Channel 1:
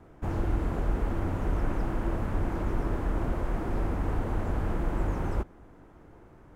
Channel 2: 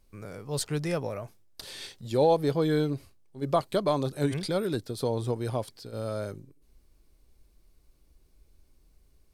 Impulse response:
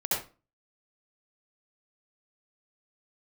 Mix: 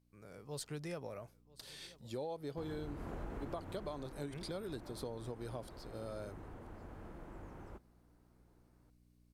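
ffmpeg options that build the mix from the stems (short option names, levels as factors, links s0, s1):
-filter_complex "[0:a]adelay=2350,volume=0.2,afade=t=out:st=3.51:d=0.71:silence=0.334965[s0];[1:a]aeval=exprs='val(0)+0.002*(sin(2*PI*60*n/s)+sin(2*PI*2*60*n/s)/2+sin(2*PI*3*60*n/s)/3+sin(2*PI*4*60*n/s)/4+sin(2*PI*5*60*n/s)/5)':c=same,volume=0.178,asplit=2[s1][s2];[s2]volume=0.0631,aecho=0:1:983:1[s3];[s0][s1][s3]amix=inputs=3:normalize=0,dynaudnorm=f=120:g=5:m=1.78,lowshelf=f=81:g=-8.5,acompressor=threshold=0.0112:ratio=6"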